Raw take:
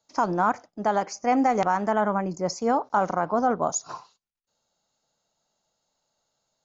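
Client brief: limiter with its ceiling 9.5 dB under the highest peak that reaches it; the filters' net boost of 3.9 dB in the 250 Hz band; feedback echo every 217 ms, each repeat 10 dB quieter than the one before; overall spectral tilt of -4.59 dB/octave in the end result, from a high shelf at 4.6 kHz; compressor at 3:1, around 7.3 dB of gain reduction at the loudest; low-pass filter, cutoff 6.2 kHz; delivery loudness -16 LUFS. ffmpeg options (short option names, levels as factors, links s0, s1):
-af "lowpass=6200,equalizer=f=250:t=o:g=4.5,highshelf=f=4600:g=6.5,acompressor=threshold=0.0562:ratio=3,alimiter=limit=0.0891:level=0:latency=1,aecho=1:1:217|434|651|868:0.316|0.101|0.0324|0.0104,volume=5.96"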